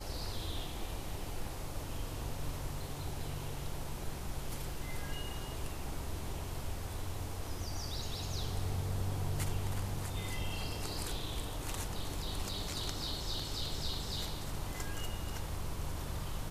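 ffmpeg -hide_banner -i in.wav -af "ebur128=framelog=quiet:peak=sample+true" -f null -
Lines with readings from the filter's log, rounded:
Integrated loudness:
  I:         -40.1 LUFS
  Threshold: -50.1 LUFS
Loudness range:
  LRA:         4.0 LU
  Threshold: -59.9 LUFS
  LRA low:   -42.2 LUFS
  LRA high:  -38.2 LUFS
Sample peak:
  Peak:      -21.5 dBFS
True peak:
  Peak:      -21.5 dBFS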